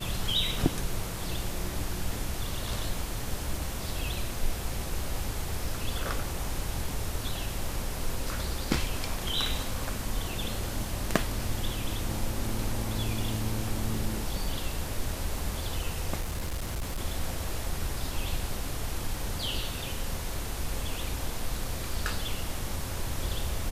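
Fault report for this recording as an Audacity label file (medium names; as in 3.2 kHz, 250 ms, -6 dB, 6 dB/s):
16.200000	16.980000	clipped -28.5 dBFS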